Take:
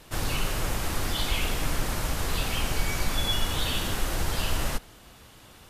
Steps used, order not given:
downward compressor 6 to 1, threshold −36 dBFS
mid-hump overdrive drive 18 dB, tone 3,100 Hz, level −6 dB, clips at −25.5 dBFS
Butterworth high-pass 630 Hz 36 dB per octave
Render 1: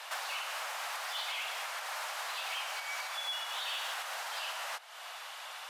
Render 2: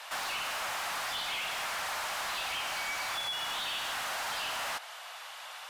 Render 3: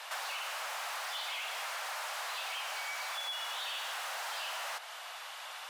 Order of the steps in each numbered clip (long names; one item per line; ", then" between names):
downward compressor, then mid-hump overdrive, then Butterworth high-pass
Butterworth high-pass, then downward compressor, then mid-hump overdrive
mid-hump overdrive, then Butterworth high-pass, then downward compressor